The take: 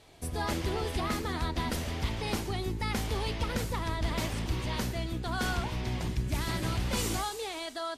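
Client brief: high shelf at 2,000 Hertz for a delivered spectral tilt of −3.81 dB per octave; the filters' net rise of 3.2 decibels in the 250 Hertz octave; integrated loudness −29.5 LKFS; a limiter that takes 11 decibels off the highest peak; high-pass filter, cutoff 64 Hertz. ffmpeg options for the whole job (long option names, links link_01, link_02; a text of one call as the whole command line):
ffmpeg -i in.wav -af "highpass=64,equalizer=frequency=250:width_type=o:gain=4,highshelf=frequency=2000:gain=7,volume=5.5dB,alimiter=limit=-21dB:level=0:latency=1" out.wav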